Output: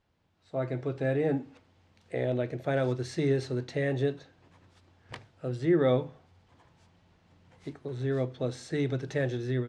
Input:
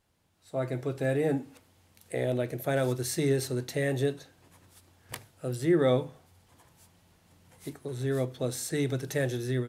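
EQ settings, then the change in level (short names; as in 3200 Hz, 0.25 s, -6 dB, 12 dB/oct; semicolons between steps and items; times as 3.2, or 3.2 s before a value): LPF 11000 Hz; air absorption 140 m; 0.0 dB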